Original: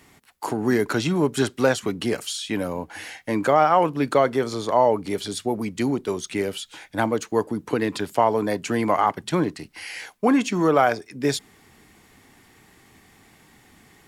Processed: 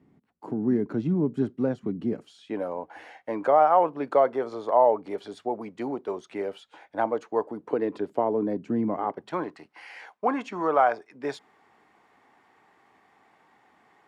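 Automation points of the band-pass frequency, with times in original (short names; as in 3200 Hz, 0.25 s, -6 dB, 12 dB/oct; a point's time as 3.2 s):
band-pass, Q 1.3
2.13 s 210 Hz
2.65 s 690 Hz
7.49 s 690 Hz
8.86 s 200 Hz
9.35 s 880 Hz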